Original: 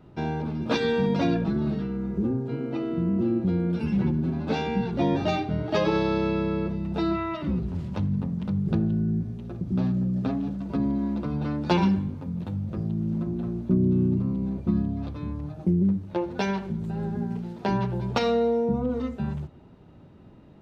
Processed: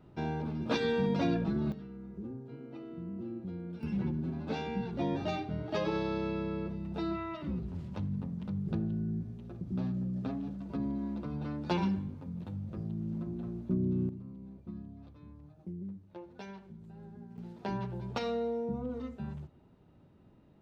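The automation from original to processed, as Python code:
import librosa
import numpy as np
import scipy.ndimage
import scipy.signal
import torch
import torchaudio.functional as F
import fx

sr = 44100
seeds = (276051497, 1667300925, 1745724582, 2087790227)

y = fx.gain(x, sr, db=fx.steps((0.0, -6.0), (1.72, -16.0), (3.83, -9.0), (14.09, -19.5), (17.38, -10.5)))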